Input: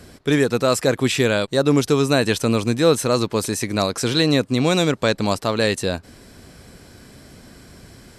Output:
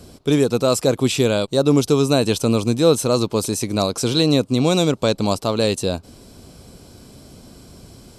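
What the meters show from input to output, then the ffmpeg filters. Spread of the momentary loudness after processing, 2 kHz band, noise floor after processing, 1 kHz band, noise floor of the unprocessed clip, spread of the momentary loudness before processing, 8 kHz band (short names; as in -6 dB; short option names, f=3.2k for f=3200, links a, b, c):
5 LU, -6.5 dB, -46 dBFS, -1.0 dB, -46 dBFS, 5 LU, +1.5 dB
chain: -af "equalizer=f=1.8k:t=o:w=0.63:g=-14,volume=1.5dB"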